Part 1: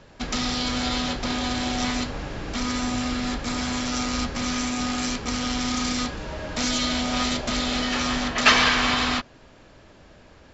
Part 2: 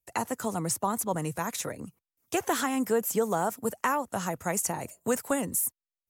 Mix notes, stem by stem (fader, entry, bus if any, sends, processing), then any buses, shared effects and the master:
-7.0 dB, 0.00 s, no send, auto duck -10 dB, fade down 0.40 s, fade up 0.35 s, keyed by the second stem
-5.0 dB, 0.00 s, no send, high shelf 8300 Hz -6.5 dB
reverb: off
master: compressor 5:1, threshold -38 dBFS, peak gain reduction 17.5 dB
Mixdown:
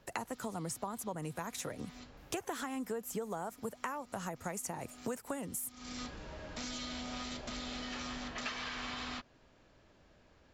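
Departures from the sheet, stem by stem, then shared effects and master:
stem 1 -7.0 dB -> -14.0 dB; stem 2 -5.0 dB -> +4.0 dB

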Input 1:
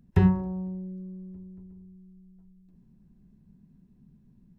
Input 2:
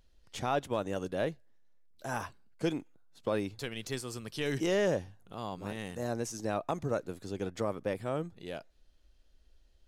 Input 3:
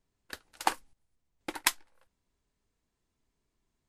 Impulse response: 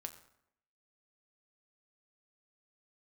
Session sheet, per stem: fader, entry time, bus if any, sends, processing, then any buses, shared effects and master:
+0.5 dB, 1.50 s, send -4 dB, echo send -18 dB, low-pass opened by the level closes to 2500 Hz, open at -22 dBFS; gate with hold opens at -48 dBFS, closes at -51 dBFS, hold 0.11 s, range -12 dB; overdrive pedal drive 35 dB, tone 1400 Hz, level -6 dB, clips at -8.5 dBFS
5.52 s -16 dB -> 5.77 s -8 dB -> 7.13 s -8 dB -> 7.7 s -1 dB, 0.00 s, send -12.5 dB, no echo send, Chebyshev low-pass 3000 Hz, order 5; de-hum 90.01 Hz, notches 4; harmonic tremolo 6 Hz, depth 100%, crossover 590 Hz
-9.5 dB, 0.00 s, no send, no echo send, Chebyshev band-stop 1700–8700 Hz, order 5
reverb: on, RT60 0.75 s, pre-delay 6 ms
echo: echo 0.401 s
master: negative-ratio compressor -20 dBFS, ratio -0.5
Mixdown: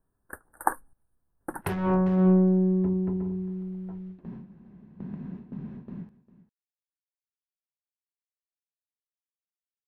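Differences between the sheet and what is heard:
stem 2: muted; stem 3 -9.5 dB -> +1.5 dB; reverb: off

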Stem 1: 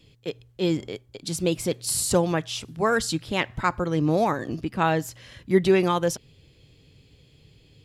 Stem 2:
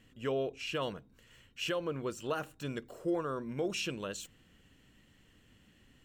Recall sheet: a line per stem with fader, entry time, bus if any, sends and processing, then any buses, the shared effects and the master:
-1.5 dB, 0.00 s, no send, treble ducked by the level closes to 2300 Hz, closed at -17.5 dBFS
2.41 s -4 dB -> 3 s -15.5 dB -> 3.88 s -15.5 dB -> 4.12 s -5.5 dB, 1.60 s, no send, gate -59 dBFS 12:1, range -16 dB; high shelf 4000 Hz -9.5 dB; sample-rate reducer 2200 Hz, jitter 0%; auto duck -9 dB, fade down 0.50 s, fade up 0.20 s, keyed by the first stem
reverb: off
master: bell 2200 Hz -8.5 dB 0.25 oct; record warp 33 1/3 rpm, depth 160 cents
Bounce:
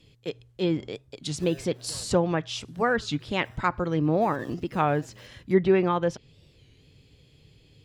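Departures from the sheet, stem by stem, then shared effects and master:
stem 2: entry 1.60 s -> 1.15 s; master: missing bell 2200 Hz -8.5 dB 0.25 oct

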